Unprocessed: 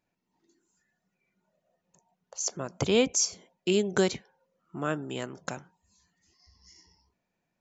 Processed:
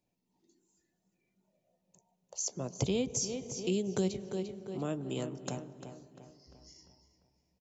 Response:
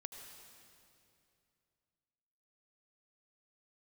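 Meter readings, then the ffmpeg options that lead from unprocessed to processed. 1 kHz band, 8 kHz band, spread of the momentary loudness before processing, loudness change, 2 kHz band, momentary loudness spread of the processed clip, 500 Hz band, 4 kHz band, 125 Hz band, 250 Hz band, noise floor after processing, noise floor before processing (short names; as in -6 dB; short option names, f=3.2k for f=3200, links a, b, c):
-8.5 dB, n/a, 16 LU, -6.5 dB, -13.5 dB, 14 LU, -6.5 dB, -8.5 dB, -0.5 dB, -3.5 dB, -82 dBFS, -82 dBFS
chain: -filter_complex "[0:a]equalizer=f=1.5k:w=1.3:g=-14.5,asplit=2[a][b];[b]adelay=347,lowpass=f=3.7k:p=1,volume=-11dB,asplit=2[c][d];[d]adelay=347,lowpass=f=3.7k:p=1,volume=0.46,asplit=2[e][f];[f]adelay=347,lowpass=f=3.7k:p=1,volume=0.46,asplit=2[g][h];[h]adelay=347,lowpass=f=3.7k:p=1,volume=0.46,asplit=2[i][j];[j]adelay=347,lowpass=f=3.7k:p=1,volume=0.46[k];[a][c][e][g][i][k]amix=inputs=6:normalize=0,asplit=2[l][m];[1:a]atrim=start_sample=2205,highshelf=f=2.1k:g=-11.5,adelay=16[n];[m][n]afir=irnorm=-1:irlink=0,volume=-6.5dB[o];[l][o]amix=inputs=2:normalize=0,acrossover=split=170[p][q];[q]acompressor=threshold=-33dB:ratio=3[r];[p][r]amix=inputs=2:normalize=0"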